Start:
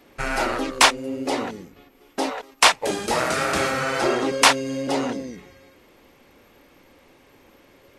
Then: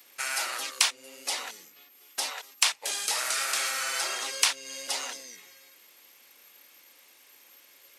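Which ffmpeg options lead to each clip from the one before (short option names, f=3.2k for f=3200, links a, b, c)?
-filter_complex "[0:a]acrossover=split=520|5800[a][b][c];[a]acompressor=threshold=-39dB:ratio=4[d];[b]acompressor=threshold=-24dB:ratio=4[e];[c]acompressor=threshold=-42dB:ratio=4[f];[d][e][f]amix=inputs=3:normalize=0,aderivative,volume=8.5dB"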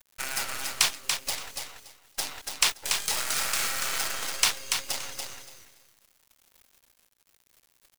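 -filter_complex "[0:a]acrusher=bits=5:dc=4:mix=0:aa=0.000001,asplit=2[a][b];[b]aecho=0:1:286|572|858:0.562|0.101|0.0182[c];[a][c]amix=inputs=2:normalize=0"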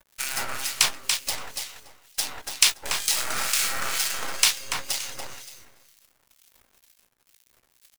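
-filter_complex "[0:a]acrossover=split=2000[a][b];[a]aeval=exprs='val(0)*(1-0.7/2+0.7/2*cos(2*PI*2.1*n/s))':c=same[c];[b]aeval=exprs='val(0)*(1-0.7/2-0.7/2*cos(2*PI*2.1*n/s))':c=same[d];[c][d]amix=inputs=2:normalize=0,asplit=2[e][f];[f]adelay=16,volume=-12dB[g];[e][g]amix=inputs=2:normalize=0,volume=5.5dB"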